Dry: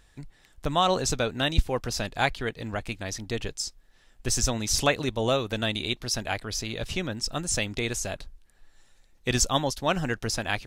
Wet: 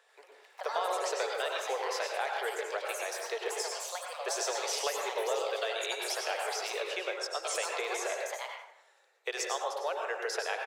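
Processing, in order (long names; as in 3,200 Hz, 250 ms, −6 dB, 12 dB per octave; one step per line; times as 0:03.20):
Butterworth high-pass 410 Hz 72 dB per octave
high-shelf EQ 3,200 Hz −11.5 dB
downward compressor, threshold −34 dBFS, peak gain reduction 14.5 dB
repeating echo 103 ms, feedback 53%, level −17.5 dB
dense smooth reverb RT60 0.81 s, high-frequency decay 0.45×, pre-delay 85 ms, DRR 1 dB
delay with pitch and tempo change per echo 88 ms, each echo +4 semitones, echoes 2, each echo −6 dB
level +2 dB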